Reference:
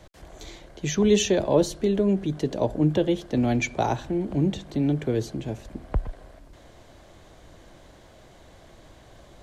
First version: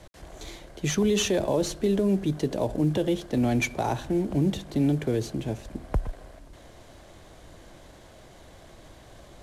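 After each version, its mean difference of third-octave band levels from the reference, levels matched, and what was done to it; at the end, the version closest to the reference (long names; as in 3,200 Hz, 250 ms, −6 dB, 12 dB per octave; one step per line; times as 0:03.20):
3.5 dB: variable-slope delta modulation 64 kbit/s
brickwall limiter −16.5 dBFS, peak gain reduction 8.5 dB
level +1 dB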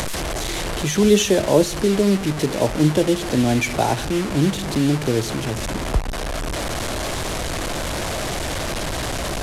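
14.5 dB: linear delta modulator 64 kbit/s, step −25 dBFS
in parallel at −3 dB: upward compression, threshold −25 dBFS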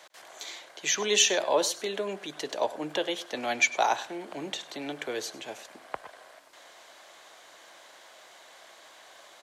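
10.5 dB: high-pass filter 920 Hz 12 dB per octave
on a send: single-tap delay 100 ms −18 dB
on the sum: level +5.5 dB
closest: first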